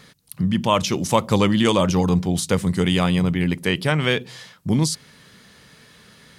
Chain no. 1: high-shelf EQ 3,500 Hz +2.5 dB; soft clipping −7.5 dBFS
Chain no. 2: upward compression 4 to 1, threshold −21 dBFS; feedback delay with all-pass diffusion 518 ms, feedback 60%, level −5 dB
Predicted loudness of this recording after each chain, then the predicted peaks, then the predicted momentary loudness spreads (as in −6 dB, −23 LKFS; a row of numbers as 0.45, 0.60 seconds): −21.0, −19.5 LKFS; −8.0, −1.0 dBFS; 6, 10 LU